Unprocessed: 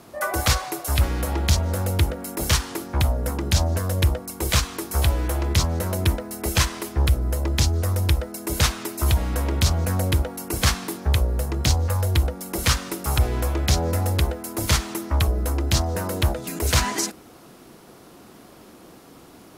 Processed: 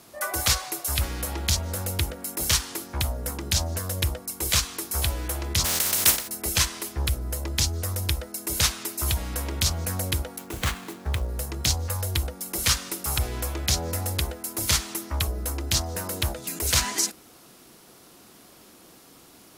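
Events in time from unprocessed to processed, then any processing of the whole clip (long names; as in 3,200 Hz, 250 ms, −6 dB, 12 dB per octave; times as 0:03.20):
0:05.64–0:06.27: compressing power law on the bin magnitudes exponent 0.3
0:10.38–0:11.29: running median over 9 samples
whole clip: high-shelf EQ 2,200 Hz +10.5 dB; level −7.5 dB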